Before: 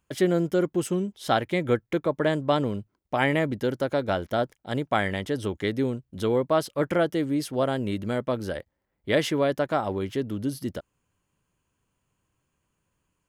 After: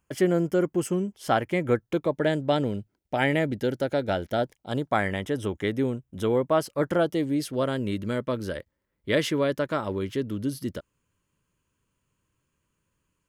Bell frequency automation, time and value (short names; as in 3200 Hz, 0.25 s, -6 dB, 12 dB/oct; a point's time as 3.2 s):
bell -15 dB 0.22 oct
1.66 s 3800 Hz
2.17 s 1100 Hz
4.4 s 1100 Hz
5.18 s 4400 Hz
6.55 s 4400 Hz
7.59 s 750 Hz